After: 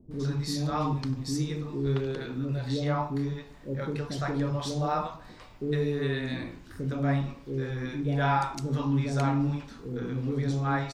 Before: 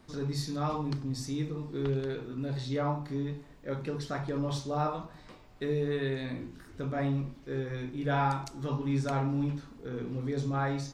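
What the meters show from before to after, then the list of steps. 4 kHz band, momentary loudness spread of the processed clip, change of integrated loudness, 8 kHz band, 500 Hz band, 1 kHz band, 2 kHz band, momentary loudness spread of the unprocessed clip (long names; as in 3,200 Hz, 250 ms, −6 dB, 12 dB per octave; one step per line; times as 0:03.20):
+4.0 dB, 9 LU, +3.0 dB, +3.5 dB, +1.5 dB, +3.0 dB, +4.0 dB, 9 LU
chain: multiband delay without the direct sound lows, highs 110 ms, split 490 Hz
level +4 dB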